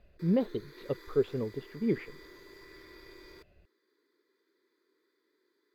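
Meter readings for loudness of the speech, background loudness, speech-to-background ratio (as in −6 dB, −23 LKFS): −32.5 LKFS, −52.5 LKFS, 20.0 dB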